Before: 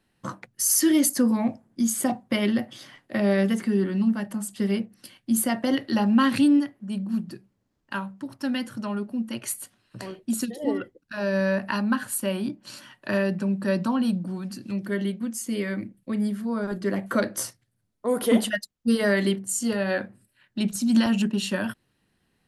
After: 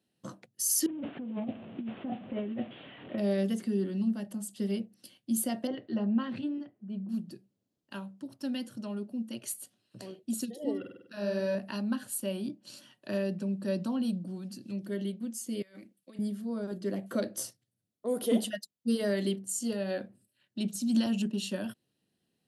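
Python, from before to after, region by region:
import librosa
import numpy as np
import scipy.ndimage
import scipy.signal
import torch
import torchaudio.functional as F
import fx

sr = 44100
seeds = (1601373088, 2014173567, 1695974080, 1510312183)

y = fx.chain(x, sr, fx.delta_mod(bps=16000, step_db=-37.0),
    fx.over_compress(threshold_db=-28.0, ratio=-1.0), at=(0.86, 3.18))
y = fx.chain(y, sr, fx.lowpass(hz=2000.0, slope=12),
    fx.notch_comb(f0_hz=280.0), at=(5.67, 7.09))
y = fx.chain(y, sr, fx.notch(hz=6700.0, q=6.0),
    fx.room_flutter(wall_m=8.4, rt60_s=0.72), at=(10.79, 11.55))
y = fx.chain(y, sr, fx.highpass(hz=1200.0, slope=6),
    fx.over_compress(threshold_db=-42.0, ratio=-0.5), at=(15.62, 16.19))
y = scipy.signal.sosfilt(scipy.signal.butter(2, 130.0, 'highpass', fs=sr, output='sos'), y)
y = fx.band_shelf(y, sr, hz=1400.0, db=-8.5, octaves=1.7)
y = y * librosa.db_to_amplitude(-6.5)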